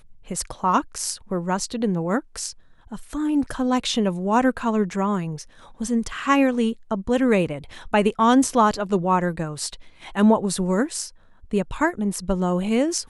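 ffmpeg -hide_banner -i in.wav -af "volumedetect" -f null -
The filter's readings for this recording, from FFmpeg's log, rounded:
mean_volume: -22.7 dB
max_volume: -6.0 dB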